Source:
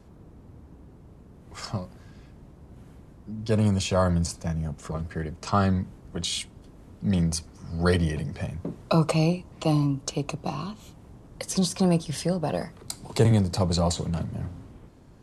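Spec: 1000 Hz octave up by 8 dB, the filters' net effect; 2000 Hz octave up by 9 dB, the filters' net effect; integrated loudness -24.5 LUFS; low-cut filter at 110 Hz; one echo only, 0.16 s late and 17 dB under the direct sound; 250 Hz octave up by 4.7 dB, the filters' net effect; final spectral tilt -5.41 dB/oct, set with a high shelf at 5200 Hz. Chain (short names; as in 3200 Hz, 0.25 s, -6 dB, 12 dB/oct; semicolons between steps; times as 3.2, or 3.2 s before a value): HPF 110 Hz; bell 250 Hz +7.5 dB; bell 1000 Hz +7.5 dB; bell 2000 Hz +8.5 dB; high shelf 5200 Hz +4 dB; echo 0.16 s -17 dB; gain -1.5 dB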